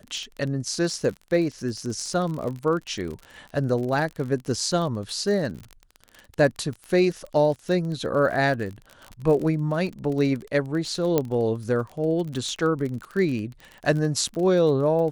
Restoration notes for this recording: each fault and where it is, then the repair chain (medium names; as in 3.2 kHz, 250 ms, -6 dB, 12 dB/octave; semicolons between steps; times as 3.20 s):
crackle 37 per s -30 dBFS
11.18 s: pop -8 dBFS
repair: de-click